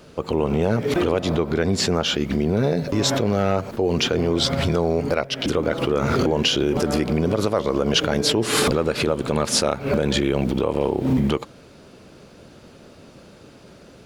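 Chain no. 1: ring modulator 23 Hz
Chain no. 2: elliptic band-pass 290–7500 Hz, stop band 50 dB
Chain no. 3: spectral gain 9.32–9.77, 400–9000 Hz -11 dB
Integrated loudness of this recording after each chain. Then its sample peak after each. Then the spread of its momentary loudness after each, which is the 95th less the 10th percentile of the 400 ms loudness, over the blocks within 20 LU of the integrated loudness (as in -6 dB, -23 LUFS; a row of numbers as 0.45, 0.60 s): -24.5, -23.0, -21.5 LUFS; -6.5, -6.5, -6.0 dBFS; 3, 4, 4 LU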